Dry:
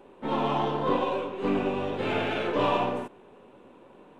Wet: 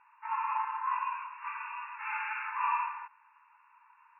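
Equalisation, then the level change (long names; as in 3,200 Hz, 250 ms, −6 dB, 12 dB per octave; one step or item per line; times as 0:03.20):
linear-phase brick-wall band-pass 840–2,800 Hz
high-frequency loss of the air 180 metres
0.0 dB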